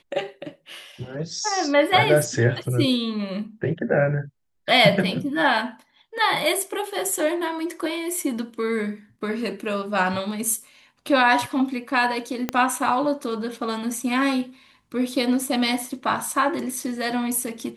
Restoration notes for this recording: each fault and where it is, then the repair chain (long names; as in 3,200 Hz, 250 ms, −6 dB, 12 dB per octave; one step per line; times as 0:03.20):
0:12.49: click −9 dBFS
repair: click removal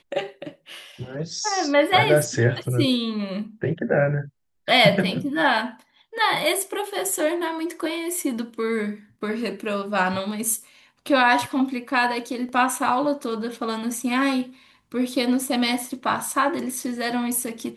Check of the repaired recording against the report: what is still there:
0:12.49: click